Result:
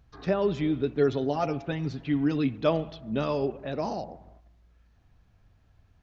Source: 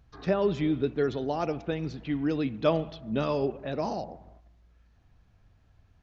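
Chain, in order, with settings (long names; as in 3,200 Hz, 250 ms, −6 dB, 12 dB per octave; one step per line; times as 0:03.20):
0:00.97–0:02.58: comb filter 7.3 ms, depth 66%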